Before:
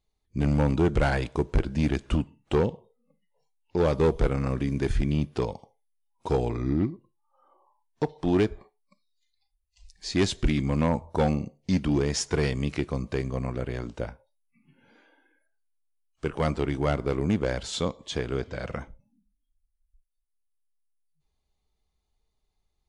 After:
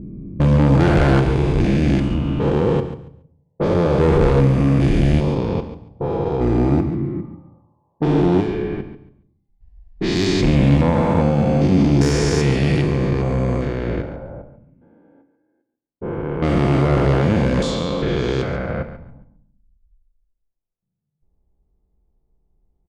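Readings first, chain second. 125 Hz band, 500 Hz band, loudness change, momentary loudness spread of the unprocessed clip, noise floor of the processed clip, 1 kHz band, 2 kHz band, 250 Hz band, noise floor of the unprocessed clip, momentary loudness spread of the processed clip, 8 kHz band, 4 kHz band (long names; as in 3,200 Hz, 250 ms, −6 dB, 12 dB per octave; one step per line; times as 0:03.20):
+11.5 dB, +8.5 dB, +9.5 dB, 10 LU, −74 dBFS, +9.0 dB, +8.0 dB, +10.0 dB, −77 dBFS, 13 LU, +3.5 dB, +6.5 dB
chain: spectrum averaged block by block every 400 ms
high-shelf EQ 5,500 Hz −4 dB
low-pass that shuts in the quiet parts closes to 480 Hz, open at −26.5 dBFS
harmonic generator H 5 −11 dB, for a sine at −14 dBFS
on a send: repeating echo 140 ms, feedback 21%, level −12 dB
on the sum: rectangular room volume 800 cubic metres, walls furnished, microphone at 0.81 metres
level +6.5 dB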